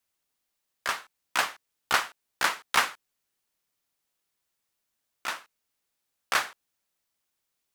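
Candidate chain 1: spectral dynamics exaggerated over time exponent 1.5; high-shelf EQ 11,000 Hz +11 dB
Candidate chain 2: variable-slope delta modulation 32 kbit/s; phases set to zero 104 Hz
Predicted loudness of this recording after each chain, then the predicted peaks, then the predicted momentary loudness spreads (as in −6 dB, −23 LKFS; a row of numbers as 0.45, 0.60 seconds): −30.5, −34.0 LKFS; −7.5, −4.5 dBFS; 15, 11 LU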